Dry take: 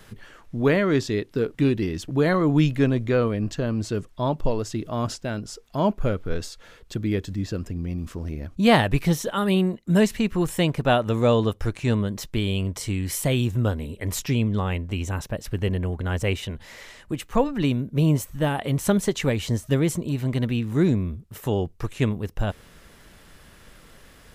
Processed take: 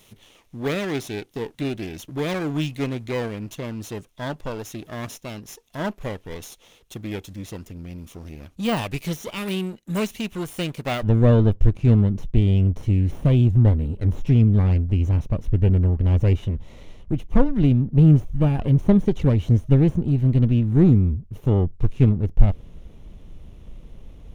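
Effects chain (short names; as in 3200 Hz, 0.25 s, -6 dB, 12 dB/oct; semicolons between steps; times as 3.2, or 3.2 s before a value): minimum comb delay 0.31 ms; de-esser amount 70%; tilt +1.5 dB/oct, from 11.02 s -3.5 dB/oct; gain -3 dB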